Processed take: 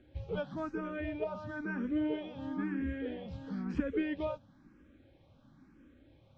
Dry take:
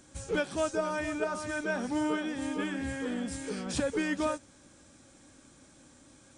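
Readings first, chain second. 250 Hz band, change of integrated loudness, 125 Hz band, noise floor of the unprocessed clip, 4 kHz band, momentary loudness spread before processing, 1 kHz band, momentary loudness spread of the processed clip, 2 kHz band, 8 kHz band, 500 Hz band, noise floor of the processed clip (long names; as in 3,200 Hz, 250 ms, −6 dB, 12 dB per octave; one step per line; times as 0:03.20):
−2.0 dB, −4.5 dB, 0.0 dB, −58 dBFS, −12.0 dB, 4 LU, −8.5 dB, 6 LU, −8.5 dB, below −30 dB, −6.0 dB, −63 dBFS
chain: low-pass filter 3,600 Hz 24 dB per octave
low-shelf EQ 410 Hz +10.5 dB
frequency shifter mixed with the dry sound +1 Hz
level −6.5 dB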